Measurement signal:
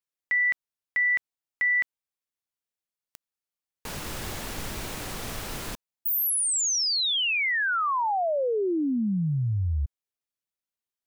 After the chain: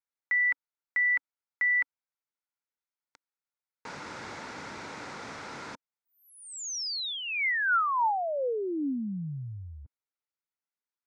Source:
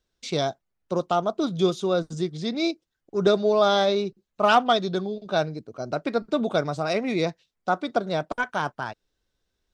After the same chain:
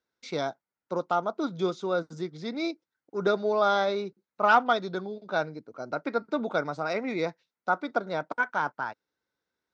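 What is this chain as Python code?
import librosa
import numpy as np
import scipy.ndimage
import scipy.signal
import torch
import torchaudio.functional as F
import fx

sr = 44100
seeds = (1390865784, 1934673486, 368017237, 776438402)

y = fx.cabinet(x, sr, low_hz=140.0, low_slope=12, high_hz=6500.0, hz=(280.0, 500.0, 910.0, 1400.0, 2100.0, 3000.0), db=(4, 4, 8, 9, 6, -5))
y = y * librosa.db_to_amplitude(-7.5)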